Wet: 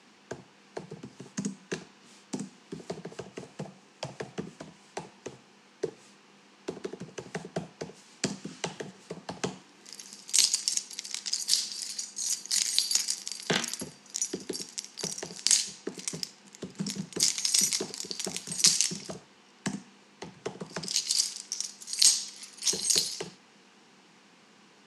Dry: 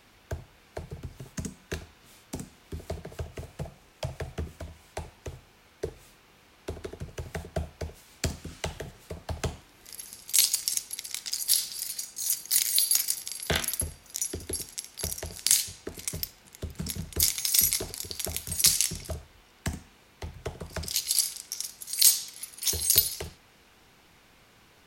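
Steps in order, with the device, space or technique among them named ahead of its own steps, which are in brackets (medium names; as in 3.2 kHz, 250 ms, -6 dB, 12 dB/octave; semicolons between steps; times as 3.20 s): television speaker (cabinet simulation 180–8000 Hz, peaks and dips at 200 Hz +6 dB, 620 Hz -7 dB, 1.4 kHz -4 dB, 2.2 kHz -4 dB, 3.6 kHz -4 dB); trim +2.5 dB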